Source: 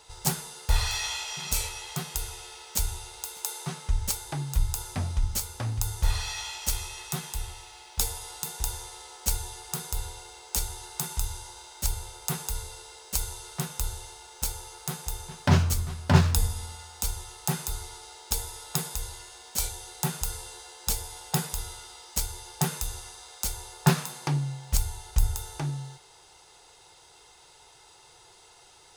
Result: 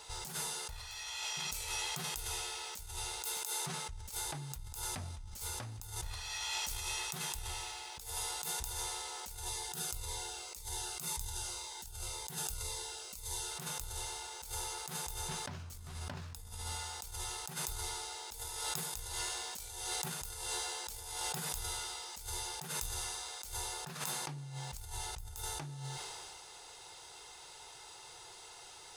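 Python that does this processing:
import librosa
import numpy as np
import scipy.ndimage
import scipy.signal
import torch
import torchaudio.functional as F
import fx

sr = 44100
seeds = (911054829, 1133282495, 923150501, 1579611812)

y = fx.notch_cascade(x, sr, direction='falling', hz=1.9, at=(9.49, 13.51))
y = fx.sustainer(y, sr, db_per_s=44.0, at=(18.44, 21.36), fade=0.02)
y = fx.over_compress(y, sr, threshold_db=-39.0, ratio=-1.0)
y = fx.low_shelf(y, sr, hz=460.0, db=-5.0)
y = fx.sustainer(y, sr, db_per_s=21.0)
y = F.gain(torch.from_numpy(y), -4.5).numpy()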